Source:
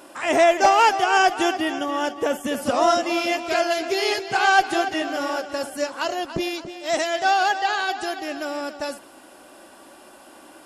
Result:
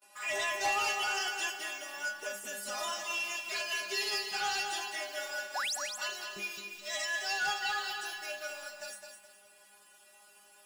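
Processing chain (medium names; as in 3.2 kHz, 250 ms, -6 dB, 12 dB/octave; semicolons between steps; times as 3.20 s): gate with hold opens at -38 dBFS; tilt shelf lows -9.5 dB, about 920 Hz; in parallel at -8.5 dB: bit crusher 5-bit; on the sum: inharmonic resonator 200 Hz, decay 0.36 s, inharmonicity 0.002; saturation -23 dBFS, distortion -14 dB; painted sound rise, 5.55–5.76 s, 660–8600 Hz -31 dBFS; bit-crushed delay 210 ms, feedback 35%, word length 10-bit, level -6.5 dB; trim -3 dB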